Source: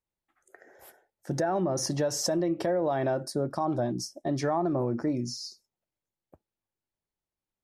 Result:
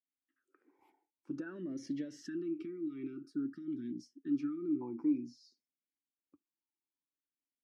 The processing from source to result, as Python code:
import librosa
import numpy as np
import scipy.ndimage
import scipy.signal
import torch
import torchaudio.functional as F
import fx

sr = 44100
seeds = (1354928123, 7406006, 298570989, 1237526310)

y = fx.spec_erase(x, sr, start_s=2.17, length_s=2.64, low_hz=410.0, high_hz=1200.0)
y = fx.vowel_sweep(y, sr, vowels='i-u', hz=0.52)